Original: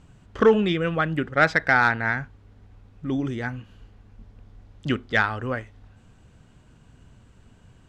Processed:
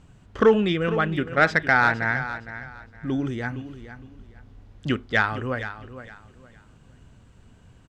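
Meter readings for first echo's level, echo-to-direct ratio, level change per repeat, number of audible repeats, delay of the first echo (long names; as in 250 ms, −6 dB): −12.5 dB, −12.0 dB, −12.0 dB, 2, 462 ms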